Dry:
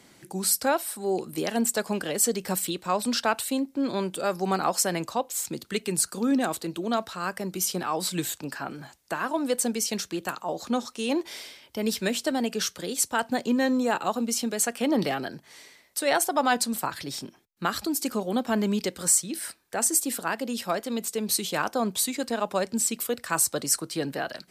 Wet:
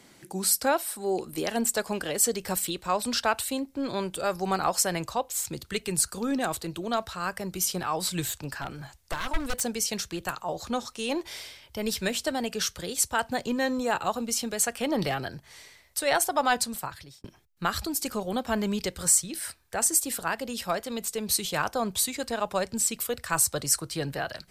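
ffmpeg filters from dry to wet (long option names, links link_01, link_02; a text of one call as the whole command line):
ffmpeg -i in.wav -filter_complex "[0:a]asettb=1/sr,asplit=3[link_01][link_02][link_03];[link_01]atrim=end=8.274[link_04];[link_02]atrim=start=8.27:end=9.61,asetpts=PTS-STARTPTS,afade=type=in:duration=0.004:curve=qsin,afade=type=out:start_time=1.336:duration=0.004:curve=qsin,aeval=exprs='0.0596*(abs(mod(val(0)/0.0596+3,4)-2)-1)':channel_layout=same[link_05];[link_03]atrim=start=9.606[link_06];[link_04][link_05]acrossfade=duration=0.004:curve1=hsin:curve2=qsin[link_07];[link_07][link_06]acrossfade=duration=0.004:curve1=qsin:curve2=hsin,asplit=2[link_08][link_09];[link_08]atrim=end=17.24,asetpts=PTS-STARTPTS,afade=type=out:start_time=16.55:duration=0.69[link_10];[link_09]atrim=start=17.24,asetpts=PTS-STARTPTS,afade=type=in:duration=0.004:curve=hsin[link_11];[link_10][link_11]concat=n=2:v=0:a=1,asubboost=boost=11.5:cutoff=71" out.wav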